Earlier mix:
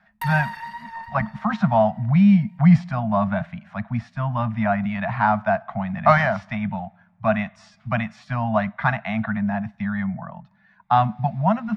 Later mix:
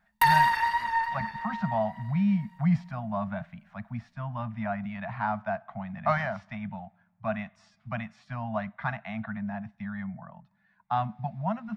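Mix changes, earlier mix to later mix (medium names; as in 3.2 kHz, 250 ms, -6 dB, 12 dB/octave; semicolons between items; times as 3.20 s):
speech -10.5 dB; background +8.5 dB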